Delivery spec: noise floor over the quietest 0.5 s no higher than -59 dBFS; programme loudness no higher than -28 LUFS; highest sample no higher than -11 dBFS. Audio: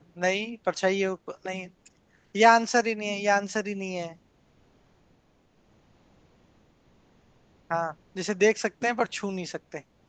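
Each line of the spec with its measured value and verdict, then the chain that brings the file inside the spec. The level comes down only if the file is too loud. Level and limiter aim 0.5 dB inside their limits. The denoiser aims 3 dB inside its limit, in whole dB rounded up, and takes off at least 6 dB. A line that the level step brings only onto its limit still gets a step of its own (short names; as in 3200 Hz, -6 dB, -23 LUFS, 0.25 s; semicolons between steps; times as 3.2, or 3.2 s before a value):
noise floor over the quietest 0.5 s -64 dBFS: OK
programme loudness -26.5 LUFS: fail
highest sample -5.0 dBFS: fail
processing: gain -2 dB; limiter -11.5 dBFS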